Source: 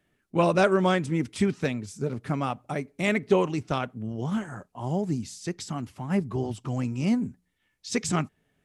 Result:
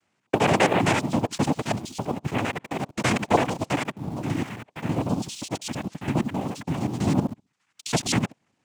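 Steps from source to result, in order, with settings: local time reversal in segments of 66 ms; high shelf 4800 Hz +6 dB; notch 370 Hz, Q 12; noise vocoder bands 4; in parallel at -10 dB: bit-crush 7-bit

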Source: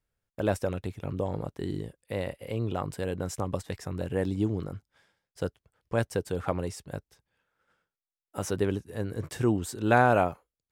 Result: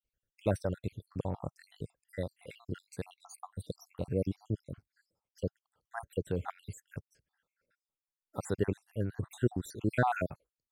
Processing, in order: random spectral dropouts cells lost 66%; dynamic EQ 130 Hz, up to +5 dB, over -45 dBFS, Q 0.91; gain -3.5 dB

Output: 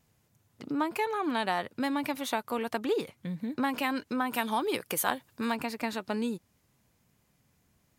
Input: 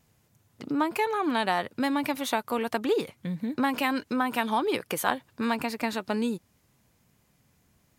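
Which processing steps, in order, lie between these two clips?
4.33–5.52 high shelf 6300 Hz +8.5 dB; gain -3.5 dB

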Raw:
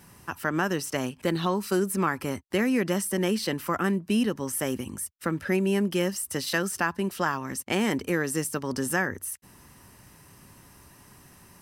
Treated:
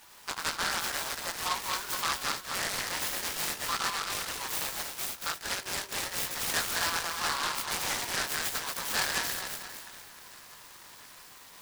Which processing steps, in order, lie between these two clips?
regenerating reverse delay 0.115 s, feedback 63%, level -2.5 dB; HPF 920 Hz 24 dB/oct; in parallel at -1 dB: compressor, threshold -38 dBFS, peak gain reduction 15.5 dB; on the sum: chorus 1.6 Hz, delay 16 ms, depth 4.5 ms; on a send: thin delay 0.68 s, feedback 77%, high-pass 1600 Hz, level -23 dB; on the sum: wavefolder -21.5 dBFS; noise-modulated delay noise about 2800 Hz, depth 0.11 ms

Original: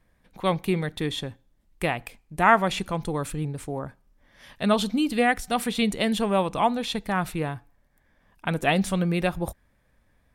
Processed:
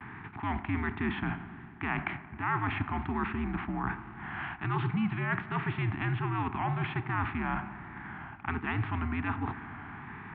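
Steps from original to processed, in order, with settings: per-bin compression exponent 0.6; reverse; compressor 6:1, threshold -30 dBFS, peak gain reduction 18 dB; reverse; Chebyshev band-stop 400–940 Hz, order 2; vibrato 1.3 Hz 90 cents; dark delay 89 ms, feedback 83%, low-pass 1800 Hz, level -17 dB; mistuned SSB -86 Hz 170–2600 Hz; gain +4 dB

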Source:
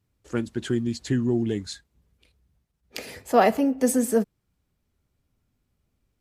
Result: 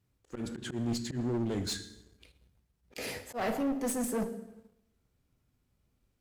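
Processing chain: reverse; compressor 4:1, threshold -31 dBFS, peak gain reduction 15.5 dB; reverse; plate-style reverb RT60 1 s, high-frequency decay 0.75×, DRR 8 dB; auto swell 0.113 s; one-sided clip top -37 dBFS, bottom -23 dBFS; sample leveller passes 1

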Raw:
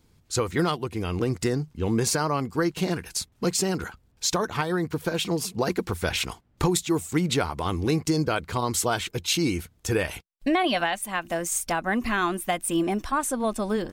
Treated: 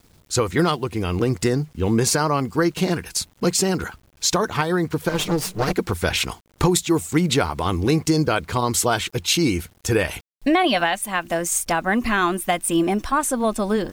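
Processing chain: 5.09–5.73 minimum comb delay 6.5 ms; bit-crush 10-bit; gain +5 dB

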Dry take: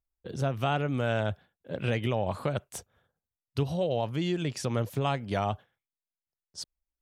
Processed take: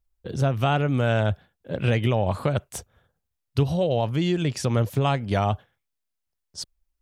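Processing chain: low shelf 74 Hz +11.5 dB; gain +5 dB

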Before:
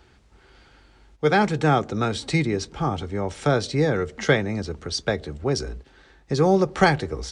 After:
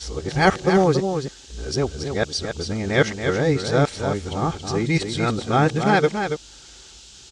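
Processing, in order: whole clip reversed; band noise 2800–7500 Hz -48 dBFS; on a send: echo 0.279 s -7 dB; on the sum: gain +1 dB

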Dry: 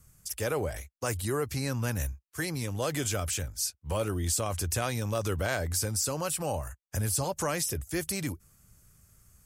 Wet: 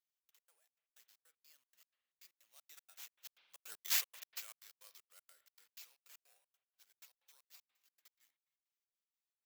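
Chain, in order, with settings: Doppler pass-by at 3.86, 32 m/s, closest 3.9 m; HPF 1100 Hz 6 dB/oct; sample-rate reducer 9500 Hz, jitter 0%; differentiator; spring tank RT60 1.4 s, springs 45 ms, chirp 70 ms, DRR 13 dB; step gate "xx.x.xx.x." 156 bpm -60 dB; gain +3 dB

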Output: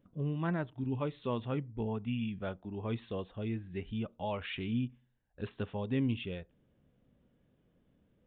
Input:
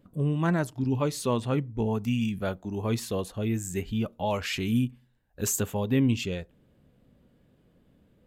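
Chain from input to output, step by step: downsampling 8000 Hz; ending taper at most 600 dB/s; gain -8 dB

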